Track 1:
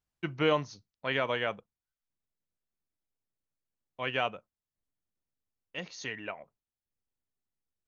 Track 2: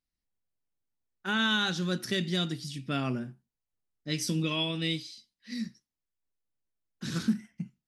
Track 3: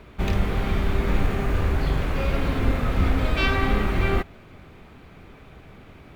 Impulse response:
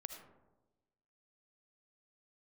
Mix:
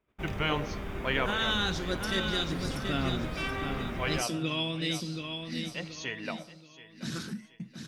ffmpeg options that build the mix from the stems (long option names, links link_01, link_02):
-filter_complex "[0:a]volume=-0.5dB,asplit=3[link_01][link_02][link_03];[link_02]volume=-8dB[link_04];[link_03]volume=-15.5dB[link_05];[1:a]volume=-1dB,asplit=3[link_06][link_07][link_08];[link_07]volume=-6.5dB[link_09];[2:a]lowshelf=frequency=100:gain=-8,bandreject=frequency=4200:width=6.3,volume=-10.5dB[link_10];[link_08]apad=whole_len=347480[link_11];[link_01][link_11]sidechaincompress=threshold=-39dB:ratio=8:attack=16:release=227[link_12];[3:a]atrim=start_sample=2205[link_13];[link_04][link_13]afir=irnorm=-1:irlink=0[link_14];[link_05][link_09]amix=inputs=2:normalize=0,aecho=0:1:728|1456|2184|2912|3640:1|0.36|0.13|0.0467|0.0168[link_15];[link_12][link_06][link_10][link_14][link_15]amix=inputs=5:normalize=0,afftfilt=real='re*lt(hypot(re,im),0.316)':imag='im*lt(hypot(re,im),0.316)':win_size=1024:overlap=0.75,agate=range=-21dB:threshold=-56dB:ratio=16:detection=peak"